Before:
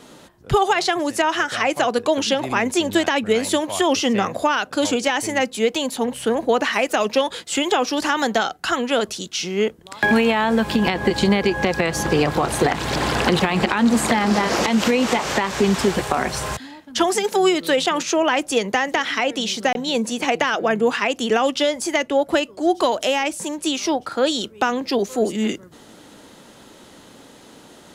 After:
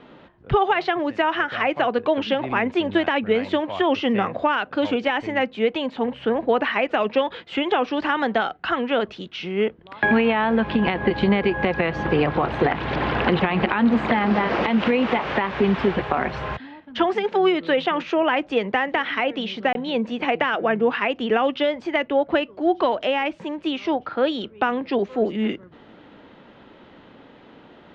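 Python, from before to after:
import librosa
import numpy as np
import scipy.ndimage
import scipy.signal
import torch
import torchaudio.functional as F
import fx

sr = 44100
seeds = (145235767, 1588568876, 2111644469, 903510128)

y = scipy.signal.sosfilt(scipy.signal.butter(4, 3000.0, 'lowpass', fs=sr, output='sos'), x)
y = y * 10.0 ** (-1.5 / 20.0)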